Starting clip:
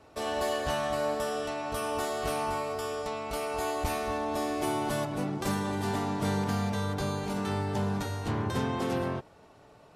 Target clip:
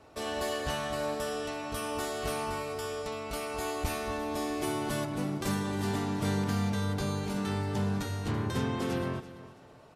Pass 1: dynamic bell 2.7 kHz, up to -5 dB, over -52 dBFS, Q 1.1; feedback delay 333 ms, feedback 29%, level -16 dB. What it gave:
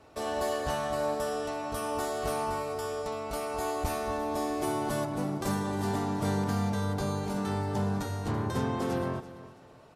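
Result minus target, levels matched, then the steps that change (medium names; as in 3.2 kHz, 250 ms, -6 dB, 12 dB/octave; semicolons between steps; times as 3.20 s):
2 kHz band -2.5 dB
change: dynamic bell 770 Hz, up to -5 dB, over -52 dBFS, Q 1.1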